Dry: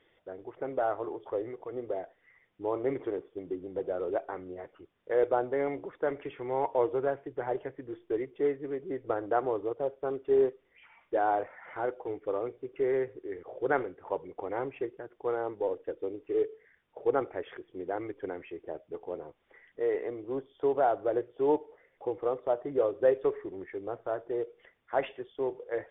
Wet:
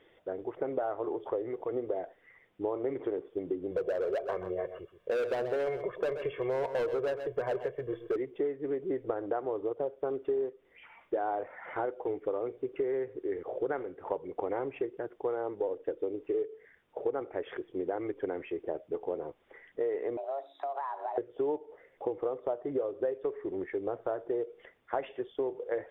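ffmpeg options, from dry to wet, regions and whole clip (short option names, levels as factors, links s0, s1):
-filter_complex "[0:a]asettb=1/sr,asplit=3[s0][s1][s2];[s0]atrim=end=3.714[s3];[s1]atrim=start=3.71:end=8.16,asetpts=PTS-STARTPTS,afade=t=in:d=0.004:c=qsin,afade=t=out:st=4.446:d=0.004:c=qsin,aecho=1:1:1.8:0.89,atrim=end_sample=196245,volume=21.1,asoftclip=hard,volume=0.0473,aecho=1:1:128:0.237,atrim=end_sample=196245[s4];[s2]atrim=start=8.156[s5];[s3][s4]acrossfade=d=0.004:c1=hsin:c2=qsin[s6];[s6][s5]acrossfade=d=0.004:c1=qsin:c2=hsin,asettb=1/sr,asplit=3[s7][s8][s9];[s7]atrim=end=20.174[s10];[s8]atrim=start=20.17:end=21.18,asetpts=PTS-STARTPTS,afade=t=in:d=0.004:c=qsin,afade=t=out:st=1.006:d=0.004:c=qsin,acompressor=threshold=0.0141:ratio=10:attack=3.2:release=140:knee=1:detection=peak,afreqshift=280[s11];[s9]atrim=start=21.176[s12];[s10][s11]acrossfade=d=0.004:c1=hsin:c2=qsin[s13];[s13][s12]acrossfade=d=0.004:c1=qsin:c2=hsin,equalizer=f=440:t=o:w=2:g=4.5,acompressor=threshold=0.0282:ratio=10,volume=1.33"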